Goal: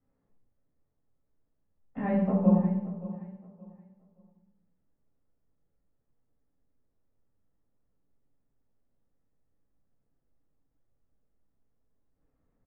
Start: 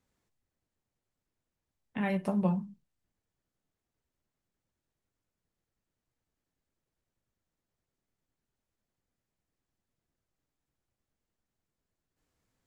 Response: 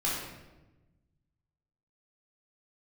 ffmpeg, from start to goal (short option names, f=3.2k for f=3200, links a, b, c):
-filter_complex "[0:a]lowpass=1.1k,aecho=1:1:573|1146|1719:0.158|0.0412|0.0107[a];[1:a]atrim=start_sample=2205,asetrate=70560,aresample=44100[b];[a][b]afir=irnorm=-1:irlink=0"